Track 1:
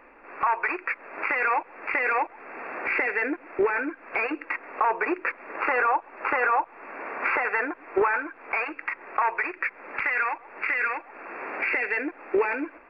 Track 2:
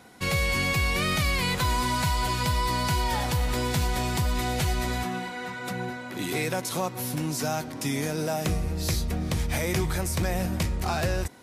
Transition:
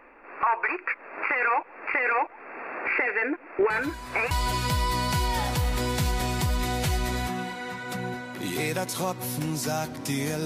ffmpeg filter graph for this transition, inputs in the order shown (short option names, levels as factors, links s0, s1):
-filter_complex "[1:a]asplit=2[s0][s1];[0:a]apad=whole_dur=10.45,atrim=end=10.45,atrim=end=4.312[s2];[s1]atrim=start=2.068:end=8.21[s3];[s0]atrim=start=1.46:end=2.07,asetpts=PTS-STARTPTS,volume=0.188,afade=t=in:d=0.004:c=hsin,afade=t=out:st=0.606:d=0.004:c=hsin,adelay=3700[s4];[s2][s3]acrossfade=d=0.004:c1=hsin:c2=hsin[s5];[s5][s4]amix=inputs=2:normalize=0"